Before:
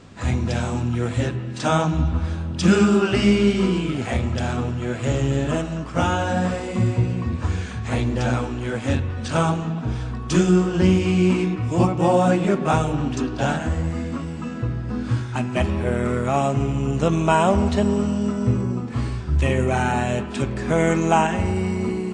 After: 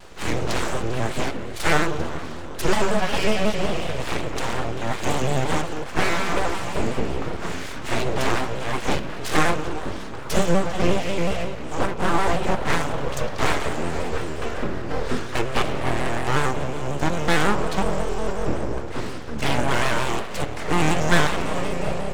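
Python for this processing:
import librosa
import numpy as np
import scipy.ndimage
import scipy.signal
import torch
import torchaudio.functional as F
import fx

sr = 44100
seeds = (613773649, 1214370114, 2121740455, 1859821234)

y = fx.rider(x, sr, range_db=10, speed_s=2.0)
y = scipy.signal.sosfilt(scipy.signal.butter(2, 160.0, 'highpass', fs=sr, output='sos'), y)
y = fx.echo_feedback(y, sr, ms=393, feedback_pct=44, wet_db=-18)
y = np.abs(y)
y = fx.vibrato_shape(y, sr, shape='square', rate_hz=5.5, depth_cents=100.0)
y = F.gain(torch.from_numpy(y), 2.0).numpy()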